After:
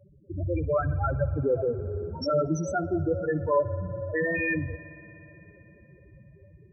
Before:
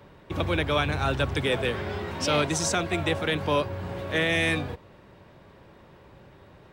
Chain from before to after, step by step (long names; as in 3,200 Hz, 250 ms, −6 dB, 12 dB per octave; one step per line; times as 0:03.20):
automatic gain control gain up to 4 dB
spectral peaks only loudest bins 4
spring reverb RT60 3.9 s, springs 57 ms, chirp 30 ms, DRR 15 dB